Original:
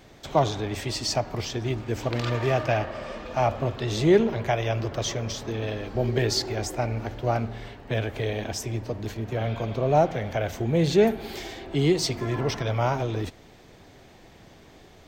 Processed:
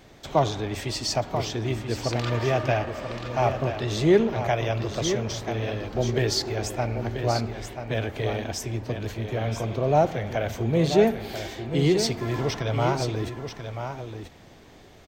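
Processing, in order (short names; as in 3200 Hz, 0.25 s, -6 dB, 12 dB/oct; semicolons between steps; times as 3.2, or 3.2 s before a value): echo 0.985 s -8.5 dB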